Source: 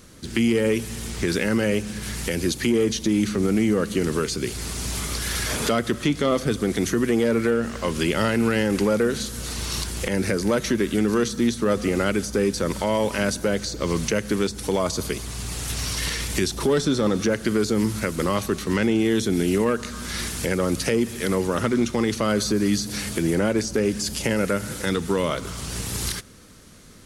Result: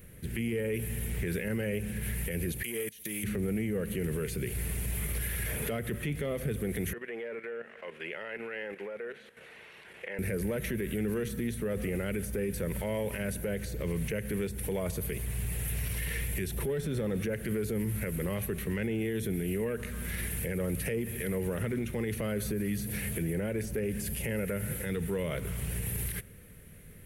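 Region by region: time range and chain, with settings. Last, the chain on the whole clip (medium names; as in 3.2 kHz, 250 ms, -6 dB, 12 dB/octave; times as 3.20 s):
2.63–3.24 s: level held to a coarse grid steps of 24 dB + tilt EQ +4 dB/octave
6.93–10.19 s: band-pass 600–2800 Hz + level held to a coarse grid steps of 11 dB
whole clip: FFT filter 160 Hz 0 dB, 290 Hz -12 dB, 440 Hz -3 dB, 1.2 kHz -16 dB, 1.8 kHz -3 dB, 2.5 kHz -4 dB, 4.8 kHz -22 dB, 6.8 kHz -18 dB, 12 kHz +4 dB; peak limiter -24.5 dBFS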